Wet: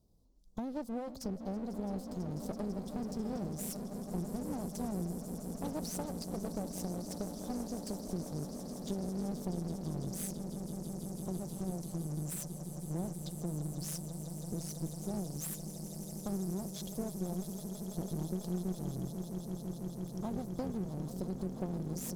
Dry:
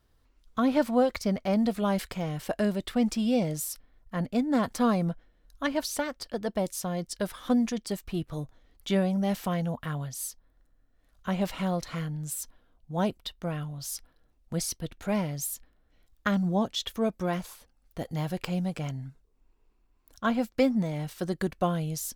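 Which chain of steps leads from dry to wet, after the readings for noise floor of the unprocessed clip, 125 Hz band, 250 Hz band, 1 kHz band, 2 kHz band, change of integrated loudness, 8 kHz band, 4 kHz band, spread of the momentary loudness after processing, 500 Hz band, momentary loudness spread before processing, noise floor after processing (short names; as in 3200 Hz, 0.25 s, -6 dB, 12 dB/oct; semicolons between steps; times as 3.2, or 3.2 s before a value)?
-67 dBFS, -5.5 dB, -9.0 dB, -13.5 dB, -21.0 dB, -9.5 dB, -6.0 dB, -13.0 dB, 4 LU, -11.5 dB, 11 LU, -46 dBFS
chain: Chebyshev band-stop 660–5400 Hz, order 2; bell 180 Hz +11.5 dB 0.64 oct; compressor 12:1, threshold -30 dBFS, peak gain reduction 17 dB; swelling echo 0.165 s, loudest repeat 8, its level -13.5 dB; one-sided clip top -43.5 dBFS; gain -2.5 dB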